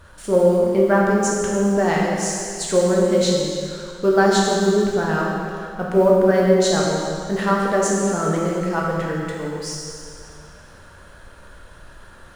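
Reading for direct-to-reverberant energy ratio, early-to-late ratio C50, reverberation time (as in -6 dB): -3.0 dB, -0.5 dB, 2.3 s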